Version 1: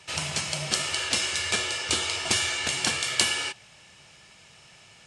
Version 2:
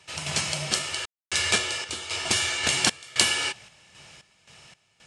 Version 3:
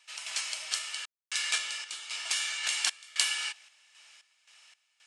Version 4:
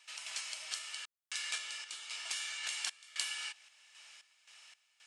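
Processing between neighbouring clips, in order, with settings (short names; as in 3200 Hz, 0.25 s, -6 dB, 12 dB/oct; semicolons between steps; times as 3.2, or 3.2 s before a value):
random-step tremolo 3.8 Hz, depth 100%; gain +4 dB
HPF 1300 Hz 12 dB/oct; gain -6 dB
compressor 1.5:1, threshold -51 dBFS, peak gain reduction 10.5 dB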